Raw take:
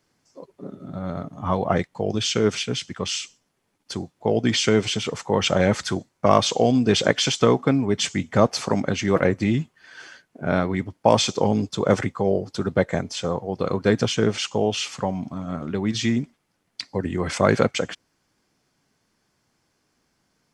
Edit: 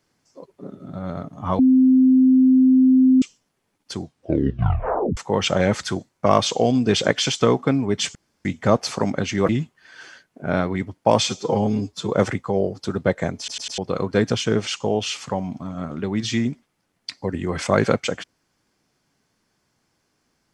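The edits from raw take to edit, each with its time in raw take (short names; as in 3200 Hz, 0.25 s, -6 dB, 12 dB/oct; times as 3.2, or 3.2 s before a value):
1.59–3.22 bleep 259 Hz -10.5 dBFS
3.99 tape stop 1.18 s
8.15 insert room tone 0.30 s
9.19–9.48 cut
11.26–11.82 stretch 1.5×
13.09 stutter in place 0.10 s, 4 plays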